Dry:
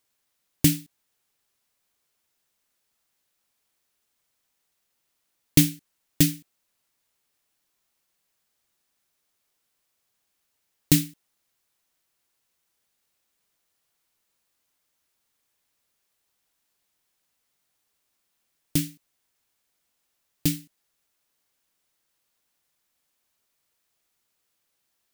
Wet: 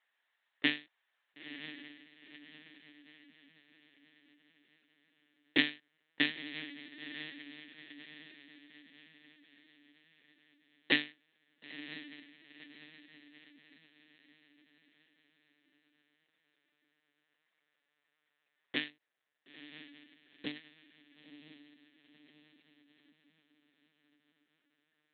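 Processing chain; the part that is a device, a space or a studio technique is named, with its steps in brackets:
0:18.89–0:20.56: parametric band 2,000 Hz −9.5 dB 2.8 octaves
feedback delay with all-pass diffusion 975 ms, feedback 46%, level −10 dB
talking toy (linear-prediction vocoder at 8 kHz pitch kept; high-pass filter 610 Hz 12 dB per octave; parametric band 1,800 Hz +11 dB 0.32 octaves)

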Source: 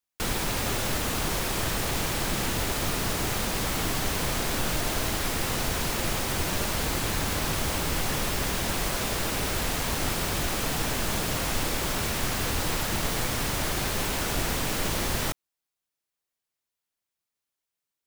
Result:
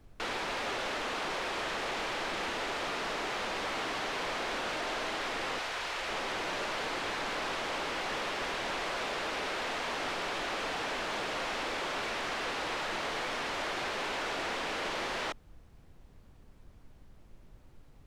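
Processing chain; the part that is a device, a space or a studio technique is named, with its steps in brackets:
0:05.58–0:06.09: high-pass filter 800 Hz 6 dB per octave
aircraft cabin announcement (band-pass filter 420–3,400 Hz; soft clipping −28 dBFS, distortion −17 dB; brown noise bed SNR 17 dB)

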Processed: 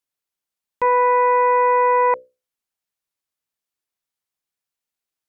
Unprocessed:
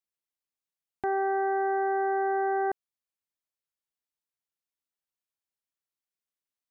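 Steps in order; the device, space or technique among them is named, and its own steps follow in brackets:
mains-hum notches 50/100/150/200/250/300/350/400/450 Hz
nightcore (speed change +27%)
dynamic equaliser 790 Hz, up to +6 dB, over −41 dBFS, Q 0.83
level +7 dB

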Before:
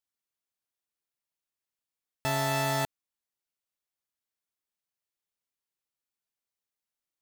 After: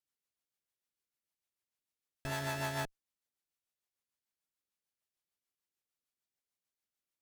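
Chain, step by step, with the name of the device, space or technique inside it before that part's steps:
overdriven rotary cabinet (tube saturation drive 36 dB, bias 0.65; rotating-speaker cabinet horn 6.7 Hz)
level +3.5 dB

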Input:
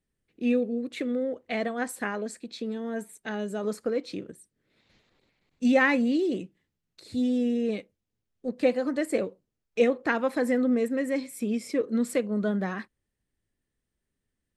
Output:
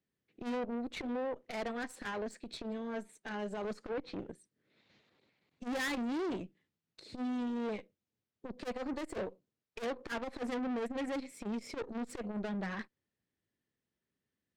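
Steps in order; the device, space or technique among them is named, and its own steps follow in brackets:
valve radio (band-pass filter 120–5,800 Hz; tube saturation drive 34 dB, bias 0.7; saturating transformer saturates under 150 Hz)
0:03.77–0:04.19: treble cut that deepens with the level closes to 2,500 Hz, closed at −37.5 dBFS
level +1 dB

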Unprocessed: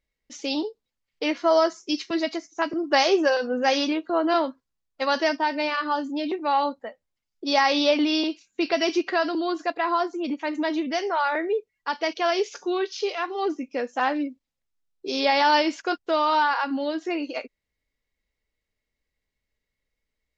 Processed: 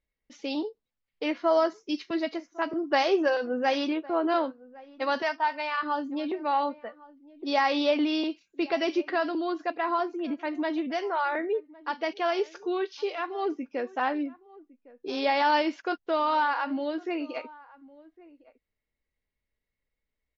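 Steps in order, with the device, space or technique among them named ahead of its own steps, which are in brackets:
shout across a valley (high-frequency loss of the air 170 metres; slap from a distant wall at 190 metres, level −21 dB)
0:05.22–0:05.83: low shelf with overshoot 590 Hz −10.5 dB, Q 1.5
level −3 dB

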